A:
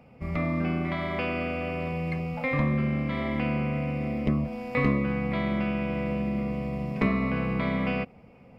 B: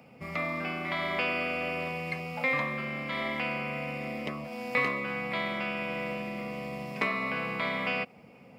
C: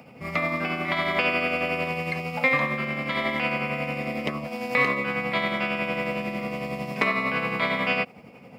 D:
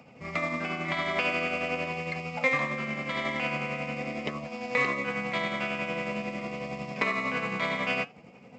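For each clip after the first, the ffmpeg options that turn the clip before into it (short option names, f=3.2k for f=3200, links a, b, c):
-filter_complex "[0:a]acrossover=split=520[a][b];[a]acompressor=threshold=-36dB:ratio=10[c];[b]highshelf=f=2.7k:g=8.5[d];[c][d]amix=inputs=2:normalize=0,highpass=140"
-af "tremolo=f=11:d=0.42,volume=8dB"
-af "aresample=16000,acrusher=bits=6:mode=log:mix=0:aa=0.000001,aresample=44100,flanger=delay=0.7:depth=7:regen=79:speed=0.44:shape=triangular"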